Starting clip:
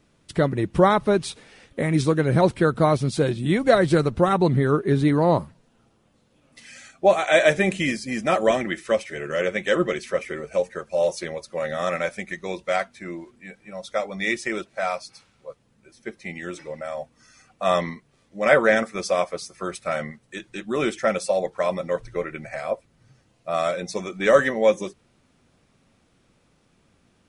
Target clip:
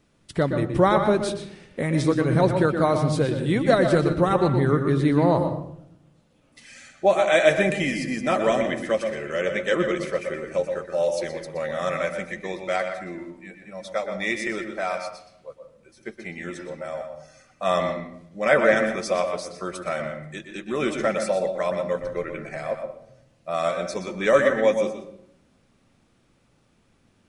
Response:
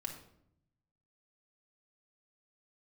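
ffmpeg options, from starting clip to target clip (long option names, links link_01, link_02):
-filter_complex "[0:a]asplit=2[link_01][link_02];[1:a]atrim=start_sample=2205,highshelf=frequency=5900:gain=-10,adelay=121[link_03];[link_02][link_03]afir=irnorm=-1:irlink=0,volume=-4dB[link_04];[link_01][link_04]amix=inputs=2:normalize=0,volume=-2dB"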